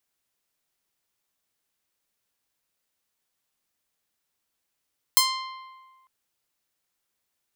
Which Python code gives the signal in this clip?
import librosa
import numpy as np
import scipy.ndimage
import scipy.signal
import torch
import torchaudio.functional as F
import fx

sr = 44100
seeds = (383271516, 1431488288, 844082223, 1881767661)

y = fx.pluck(sr, length_s=0.9, note=84, decay_s=1.5, pick=0.45, brightness='bright')